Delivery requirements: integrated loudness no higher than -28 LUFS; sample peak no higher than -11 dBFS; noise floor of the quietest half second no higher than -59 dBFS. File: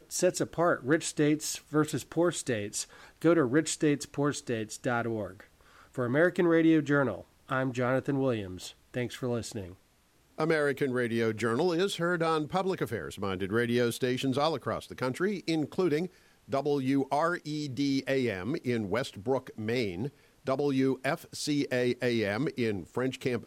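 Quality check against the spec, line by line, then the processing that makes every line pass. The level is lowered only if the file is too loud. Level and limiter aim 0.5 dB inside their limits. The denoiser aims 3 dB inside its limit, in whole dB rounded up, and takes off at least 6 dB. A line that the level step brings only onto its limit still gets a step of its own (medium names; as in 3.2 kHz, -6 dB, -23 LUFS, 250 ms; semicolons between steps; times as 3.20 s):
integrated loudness -30.0 LUFS: pass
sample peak -12.5 dBFS: pass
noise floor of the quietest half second -65 dBFS: pass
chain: none needed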